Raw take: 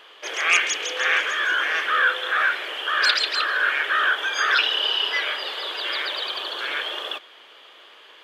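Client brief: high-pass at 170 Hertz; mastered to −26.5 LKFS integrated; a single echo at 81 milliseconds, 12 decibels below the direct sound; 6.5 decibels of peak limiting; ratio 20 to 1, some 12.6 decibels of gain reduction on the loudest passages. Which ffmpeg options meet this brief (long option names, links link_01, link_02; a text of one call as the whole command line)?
ffmpeg -i in.wav -af "highpass=170,acompressor=threshold=-26dB:ratio=20,alimiter=limit=-21.5dB:level=0:latency=1,aecho=1:1:81:0.251,volume=3dB" out.wav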